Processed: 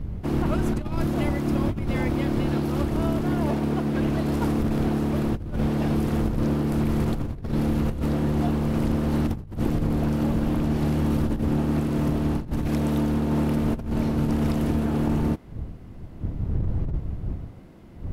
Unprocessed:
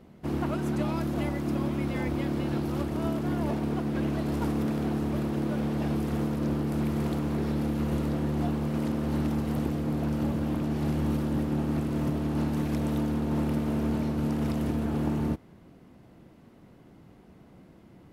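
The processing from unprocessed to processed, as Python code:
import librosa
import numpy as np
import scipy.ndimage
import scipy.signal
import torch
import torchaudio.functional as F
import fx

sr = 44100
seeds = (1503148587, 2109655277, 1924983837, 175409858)

y = fx.dmg_wind(x, sr, seeds[0], corner_hz=100.0, level_db=-30.0)
y = fx.over_compress(y, sr, threshold_db=-26.0, ratio=-0.5)
y = F.gain(torch.from_numpy(y), 3.5).numpy()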